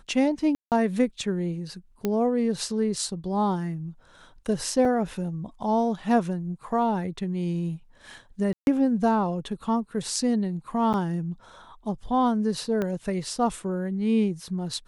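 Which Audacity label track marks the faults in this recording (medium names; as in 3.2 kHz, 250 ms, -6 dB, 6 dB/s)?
0.550000	0.720000	dropout 168 ms
2.050000	2.050000	pop -13 dBFS
4.850000	4.850000	dropout 2.9 ms
8.530000	8.670000	dropout 141 ms
10.930000	10.940000	dropout 8.4 ms
12.820000	12.820000	pop -16 dBFS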